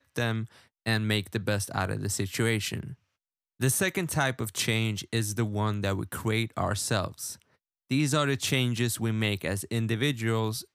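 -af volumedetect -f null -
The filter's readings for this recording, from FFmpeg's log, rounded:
mean_volume: -29.2 dB
max_volume: -12.1 dB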